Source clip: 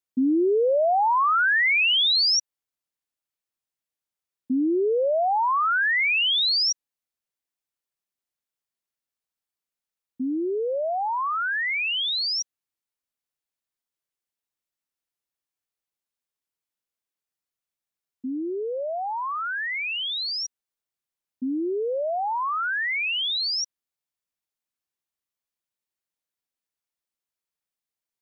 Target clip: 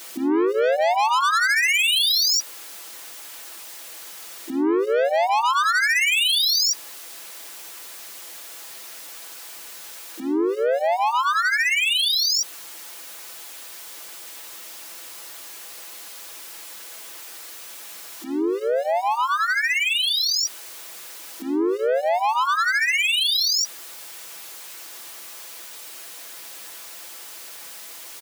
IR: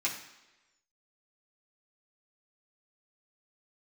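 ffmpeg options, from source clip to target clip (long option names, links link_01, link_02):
-filter_complex "[0:a]aeval=exprs='val(0)+0.5*0.01*sgn(val(0))':channel_layout=same,highpass=340,aecho=1:1:6:0.85,asoftclip=type=tanh:threshold=-24.5dB,asplit=3[link_01][link_02][link_03];[link_02]asetrate=37084,aresample=44100,atempo=1.18921,volume=-16dB[link_04];[link_03]asetrate=55563,aresample=44100,atempo=0.793701,volume=-7dB[link_05];[link_01][link_04][link_05]amix=inputs=3:normalize=0,volume=6dB"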